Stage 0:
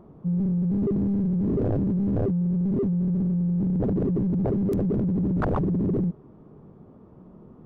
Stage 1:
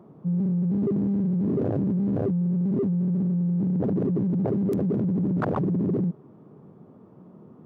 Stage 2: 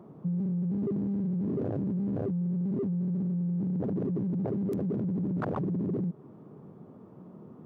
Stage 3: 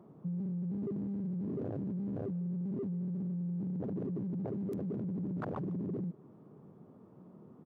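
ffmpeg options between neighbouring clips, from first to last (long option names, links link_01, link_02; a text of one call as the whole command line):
ffmpeg -i in.wav -af "highpass=frequency=110:width=0.5412,highpass=frequency=110:width=1.3066" out.wav
ffmpeg -i in.wav -af "acompressor=threshold=-28dB:ratio=6" out.wav
ffmpeg -i in.wav -filter_complex "[0:a]asplit=2[link_01][link_02];[link_02]adelay=150,highpass=300,lowpass=3400,asoftclip=type=hard:threshold=-28.5dB,volume=-21dB[link_03];[link_01][link_03]amix=inputs=2:normalize=0,volume=-6.5dB" out.wav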